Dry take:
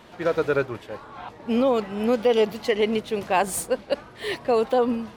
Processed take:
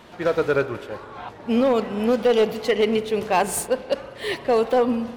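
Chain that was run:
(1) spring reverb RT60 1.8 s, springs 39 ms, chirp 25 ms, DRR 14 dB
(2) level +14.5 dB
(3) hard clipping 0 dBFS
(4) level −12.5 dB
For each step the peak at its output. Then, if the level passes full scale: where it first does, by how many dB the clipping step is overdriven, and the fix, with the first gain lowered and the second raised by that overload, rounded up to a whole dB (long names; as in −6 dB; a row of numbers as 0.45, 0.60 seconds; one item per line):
−9.5, +5.0, 0.0, −12.5 dBFS
step 2, 5.0 dB
step 2 +9.5 dB, step 4 −7.5 dB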